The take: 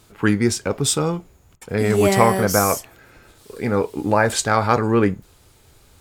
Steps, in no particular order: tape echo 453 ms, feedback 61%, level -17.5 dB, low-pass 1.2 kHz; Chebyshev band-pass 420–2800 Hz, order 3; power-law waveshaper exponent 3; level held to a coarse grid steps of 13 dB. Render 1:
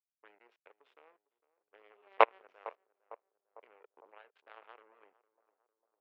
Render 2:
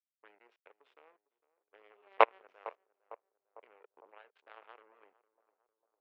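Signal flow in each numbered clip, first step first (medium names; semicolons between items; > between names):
level held to a coarse grid > power-law waveshaper > tape echo > Chebyshev band-pass; level held to a coarse grid > power-law waveshaper > Chebyshev band-pass > tape echo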